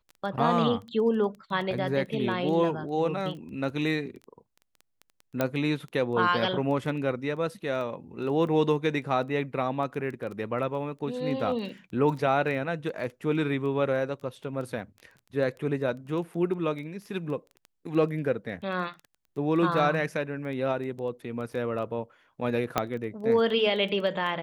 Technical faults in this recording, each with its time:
surface crackle 10 per second −35 dBFS
0:05.41: click −12 dBFS
0:22.78: click −9 dBFS

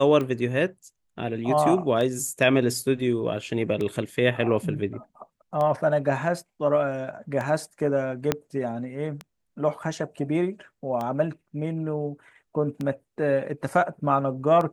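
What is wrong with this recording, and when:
scratch tick 33 1/3 rpm −18 dBFS
0:08.32: click −7 dBFS

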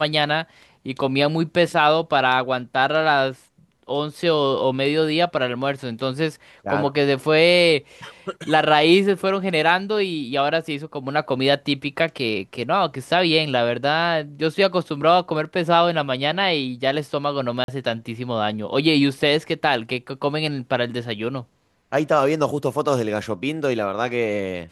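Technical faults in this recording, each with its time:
0:17.64–0:17.68: drop-out 42 ms

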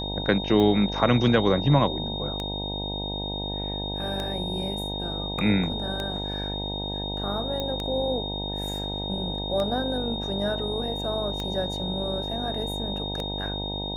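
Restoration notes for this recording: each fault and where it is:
mains buzz 50 Hz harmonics 19 −33 dBFS
scratch tick 33 1/3 rpm −16 dBFS
whistle 3,700 Hz −32 dBFS
0:07.60: click −16 dBFS

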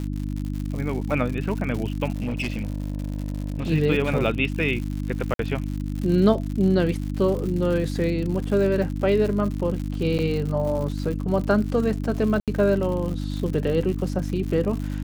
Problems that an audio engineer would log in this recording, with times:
surface crackle 130 per second −30 dBFS
mains hum 50 Hz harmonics 6 −28 dBFS
0:02.14–0:03.70: clipping −22.5 dBFS
0:05.34–0:05.39: drop-out 52 ms
0:10.18–0:10.19: drop-out 8.8 ms
0:12.40–0:12.48: drop-out 77 ms

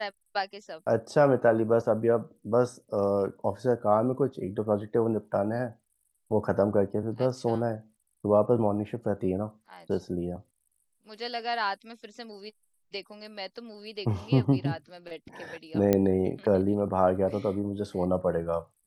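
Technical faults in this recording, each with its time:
0:15.93: click −10 dBFS

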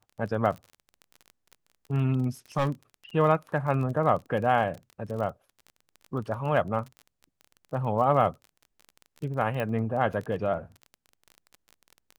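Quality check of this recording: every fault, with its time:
surface crackle 27 per second −35 dBFS
0:02.57–0:02.70: clipping −21.5 dBFS
0:09.60: click −19 dBFS

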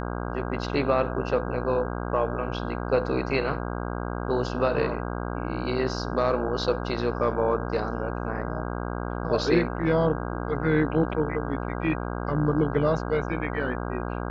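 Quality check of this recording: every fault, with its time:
mains buzz 60 Hz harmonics 27 −31 dBFS

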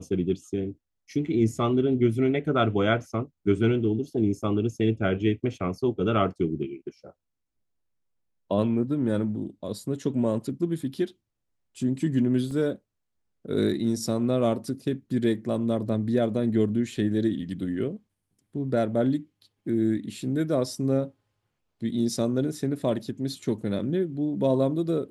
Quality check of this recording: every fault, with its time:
0:12.51: drop-out 3.6 ms

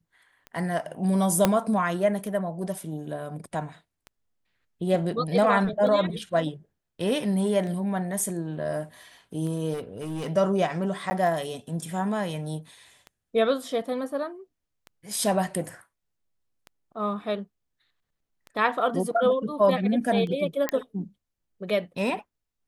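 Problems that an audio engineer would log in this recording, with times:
scratch tick 33 1/3 rpm −26 dBFS
0:01.45: click −5 dBFS
0:09.73–0:10.27: clipping −28.5 dBFS
0:11.10–0:11.11: drop-out 10 ms
0:20.69: click −10 dBFS

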